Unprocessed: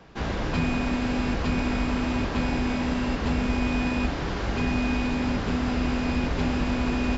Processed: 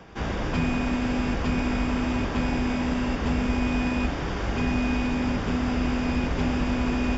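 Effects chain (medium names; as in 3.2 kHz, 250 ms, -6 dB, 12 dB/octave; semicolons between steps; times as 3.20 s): band-stop 4.1 kHz, Q 6.3; reverse; upward compressor, threshold -28 dBFS; reverse; pre-echo 89 ms -20 dB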